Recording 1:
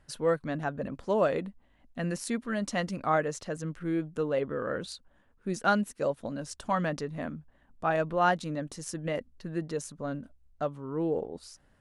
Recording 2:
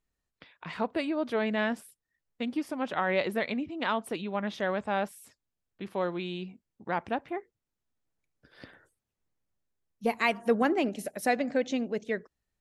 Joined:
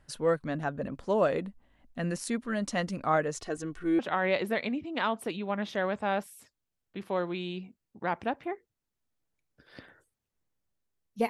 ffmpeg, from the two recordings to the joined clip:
-filter_complex "[0:a]asettb=1/sr,asplit=3[s0][s1][s2];[s0]atrim=end=3.354[s3];[s1]atrim=start=3.35:end=3.99,asetpts=PTS-STARTPTS,afade=t=in:d=0.004:c=qsin,afade=t=out:st=0.636:d=0.004:c=qsin,aecho=1:1:2.7:0.74,atrim=end_sample=28224[s4];[s2]atrim=start=3.986[s5];[s3][s4]acrossfade=d=0.004:c1=hsin:c2=qsin[s6];[s6][s5]acrossfade=d=0.004:c1=qsin:c2=hsin,apad=whole_dur=11.29,atrim=end=11.29,atrim=end=3.992[s7];[1:a]atrim=start=2.838:end=10.14[s8];[s7][s8]acrossfade=d=0.004:c1=hsin:c2=hsin"

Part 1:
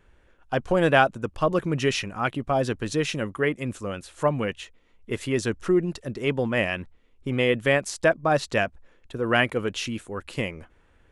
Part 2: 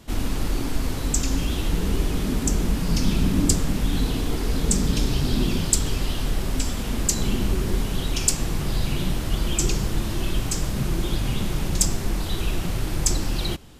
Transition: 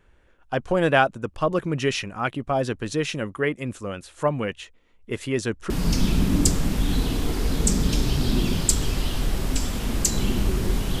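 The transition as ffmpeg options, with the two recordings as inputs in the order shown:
-filter_complex "[0:a]apad=whole_dur=11,atrim=end=11,atrim=end=5.702[s0];[1:a]atrim=start=2.738:end=8.04[s1];[s0][s1]acrossfade=d=0.004:c1=hsin:c2=hsin"

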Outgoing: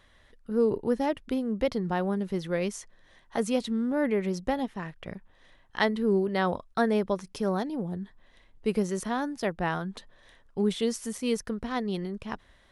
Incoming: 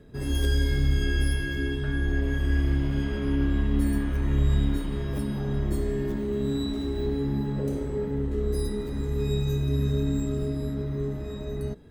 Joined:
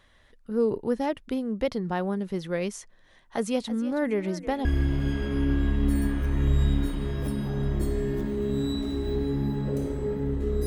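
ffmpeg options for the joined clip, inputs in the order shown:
-filter_complex "[0:a]asettb=1/sr,asplit=3[s0][s1][s2];[s0]atrim=end=3.044[s3];[s1]atrim=start=3.04:end=4.65,asetpts=PTS-STARTPTS,afade=t=in:d=0.004:c=qsin,afade=t=out:st=1.606:d=0.004:c=qsin,asplit=4[s4][s5][s6][s7];[s5]adelay=321,afreqshift=46,volume=0.188[s8];[s6]adelay=642,afreqshift=92,volume=0.0582[s9];[s7]adelay=963,afreqshift=138,volume=0.0182[s10];[s4][s8][s9][s10]amix=inputs=4:normalize=0,atrim=end_sample=71001[s11];[s2]atrim=start=4.646[s12];[s3][s11]acrossfade=d=0.004:c1=hsin:c2=qsin[s13];[s13][s12]acrossfade=d=0.004:c1=qsin:c2=hsin,apad=whole_dur=10.66,atrim=end=10.66,atrim=end=4.652[s14];[1:a]atrim=start=2.558:end=8.57[s15];[s14][s15]acrossfade=d=0.004:c1=hsin:c2=hsin"

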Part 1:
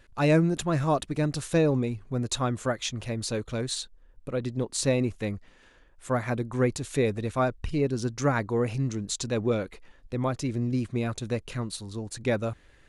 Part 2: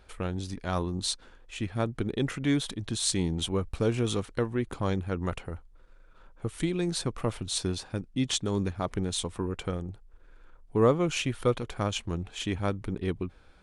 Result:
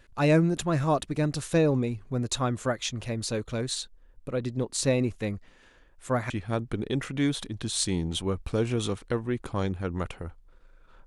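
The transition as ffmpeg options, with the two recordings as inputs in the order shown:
-filter_complex "[0:a]apad=whole_dur=11.06,atrim=end=11.06,atrim=end=6.302[s0];[1:a]atrim=start=1.568:end=6.33[s1];[s0][s1]acrossfade=d=0.004:c1=hsin:c2=hsin"

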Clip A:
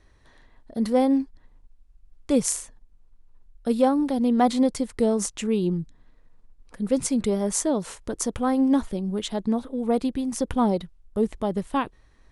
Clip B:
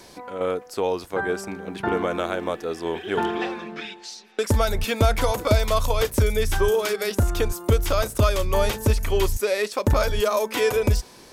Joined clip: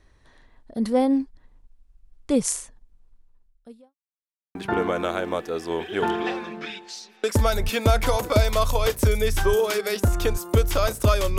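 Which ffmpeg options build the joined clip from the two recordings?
-filter_complex "[0:a]apad=whole_dur=11.38,atrim=end=11.38,asplit=2[s0][s1];[s0]atrim=end=3.95,asetpts=PTS-STARTPTS,afade=t=out:st=3.13:d=0.82:c=qua[s2];[s1]atrim=start=3.95:end=4.55,asetpts=PTS-STARTPTS,volume=0[s3];[1:a]atrim=start=1.7:end=8.53,asetpts=PTS-STARTPTS,afade=t=in:d=0.004:c=hsin[s4];[s2][s3][s4]concat=n=3:v=0:a=1"

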